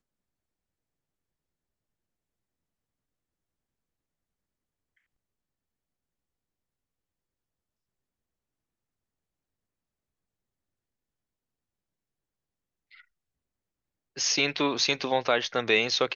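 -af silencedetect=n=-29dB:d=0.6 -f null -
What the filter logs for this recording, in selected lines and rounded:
silence_start: 0.00
silence_end: 14.18 | silence_duration: 14.18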